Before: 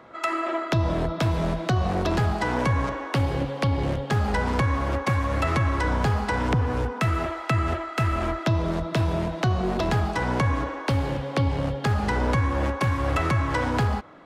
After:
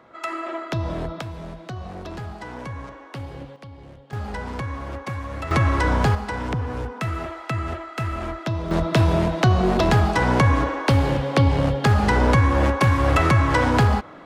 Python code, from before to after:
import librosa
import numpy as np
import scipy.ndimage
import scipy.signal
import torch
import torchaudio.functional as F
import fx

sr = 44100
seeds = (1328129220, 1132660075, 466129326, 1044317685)

y = fx.gain(x, sr, db=fx.steps((0.0, -3.0), (1.21, -10.5), (3.56, -18.0), (4.13, -6.5), (5.51, 4.0), (6.15, -3.0), (8.71, 6.0)))